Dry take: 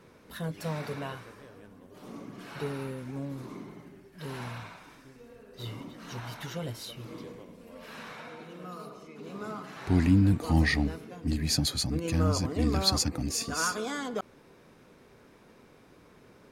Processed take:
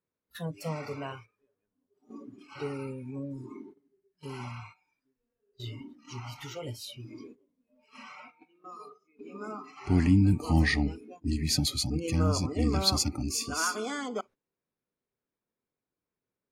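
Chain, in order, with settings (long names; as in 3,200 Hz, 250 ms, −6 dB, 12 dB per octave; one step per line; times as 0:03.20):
noise reduction from a noise print of the clip's start 21 dB
noise gate −49 dBFS, range −14 dB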